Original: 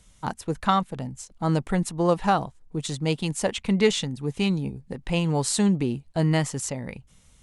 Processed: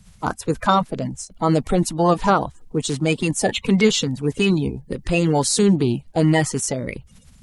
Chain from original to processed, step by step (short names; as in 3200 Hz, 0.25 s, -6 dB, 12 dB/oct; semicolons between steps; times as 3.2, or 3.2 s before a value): bin magnitudes rounded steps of 30 dB; in parallel at -2 dB: limiter -18.5 dBFS, peak gain reduction 11 dB; on the sum: gain +2.5 dB